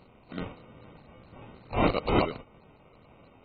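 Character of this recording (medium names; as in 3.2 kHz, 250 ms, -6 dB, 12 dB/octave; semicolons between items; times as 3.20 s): aliases and images of a low sample rate 1.7 kHz, jitter 0%; AAC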